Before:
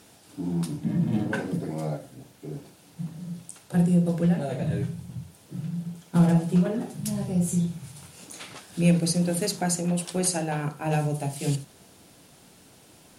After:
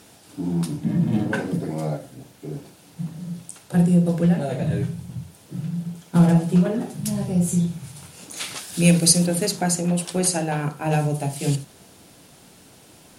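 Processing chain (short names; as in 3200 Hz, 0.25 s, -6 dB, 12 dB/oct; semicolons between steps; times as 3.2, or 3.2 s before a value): 8.36–9.25 high shelf 2300 Hz -> 3600 Hz +11 dB; gain +4 dB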